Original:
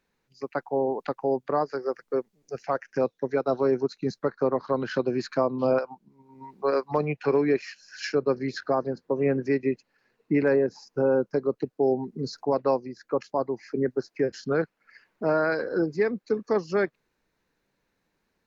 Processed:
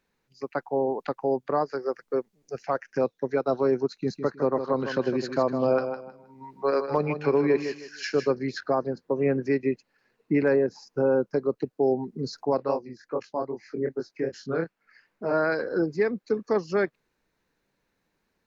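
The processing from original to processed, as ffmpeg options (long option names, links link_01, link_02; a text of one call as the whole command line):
ffmpeg -i in.wav -filter_complex "[0:a]asettb=1/sr,asplit=3[link_01][link_02][link_03];[link_01]atrim=end=3.924[link_04];[link_02]atrim=start=3.92:end=8.31,asetpts=PTS-STARTPTS,afade=type=in:duration=0.004:curve=qsin,afade=type=out:start_time=4.386:duration=0.004:curve=qsin,aecho=1:1:157|314|471:0.355|0.0887|0.0222,atrim=end_sample=193599[link_05];[link_03]atrim=start=8.306[link_06];[link_04][link_05]acrossfade=duration=0.004:curve1=hsin:curve2=qsin[link_07];[link_07][link_06]acrossfade=duration=0.004:curve1=qsin:curve2=hsin,asplit=3[link_08][link_09][link_10];[link_08]afade=type=out:start_time=12.58:duration=0.02[link_11];[link_09]flanger=delay=19:depth=5.9:speed=2.5,afade=type=in:start_time=12.58:duration=0.02,afade=type=out:start_time=15.32:duration=0.02[link_12];[link_10]afade=type=in:start_time=15.32:duration=0.02[link_13];[link_11][link_12][link_13]amix=inputs=3:normalize=0" out.wav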